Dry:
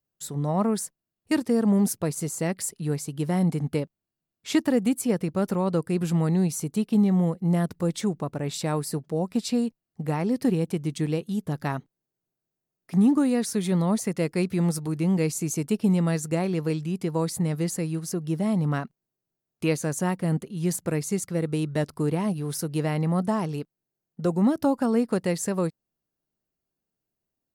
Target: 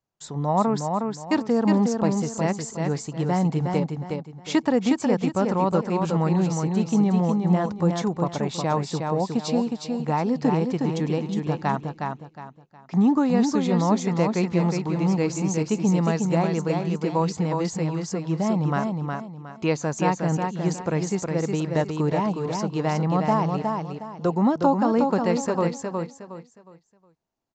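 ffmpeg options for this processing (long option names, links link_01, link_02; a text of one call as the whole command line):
ffmpeg -i in.wav -filter_complex "[0:a]equalizer=frequency=900:width=1.6:gain=9,asplit=2[link_01][link_02];[link_02]aecho=0:1:363|726|1089|1452:0.596|0.179|0.0536|0.0161[link_03];[link_01][link_03]amix=inputs=2:normalize=0,aresample=16000,aresample=44100" out.wav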